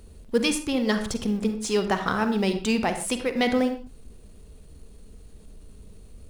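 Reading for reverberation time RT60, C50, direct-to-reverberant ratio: no single decay rate, 9.0 dB, 7.5 dB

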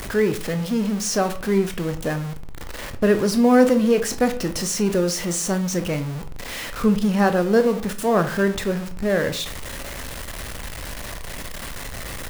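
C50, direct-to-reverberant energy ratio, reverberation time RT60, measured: 13.0 dB, 7.5 dB, 0.45 s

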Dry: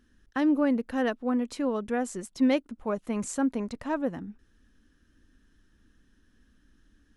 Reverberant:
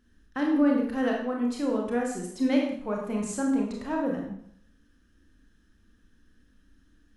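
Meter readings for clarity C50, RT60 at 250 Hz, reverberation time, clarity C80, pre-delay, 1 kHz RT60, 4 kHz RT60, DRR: 3.0 dB, 0.65 s, 0.65 s, 6.0 dB, 26 ms, 0.60 s, 0.55 s, -0.5 dB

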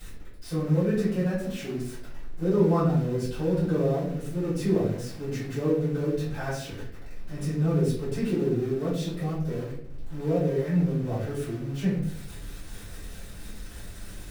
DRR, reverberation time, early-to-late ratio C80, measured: -13.5 dB, 0.65 s, 7.5 dB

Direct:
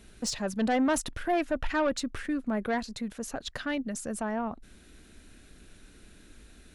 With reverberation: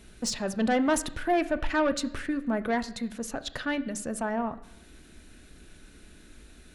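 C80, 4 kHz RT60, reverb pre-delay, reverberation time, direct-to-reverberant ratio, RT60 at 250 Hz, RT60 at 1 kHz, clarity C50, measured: 18.0 dB, 0.90 s, 3 ms, 0.85 s, 10.0 dB, 0.85 s, 0.85 s, 16.0 dB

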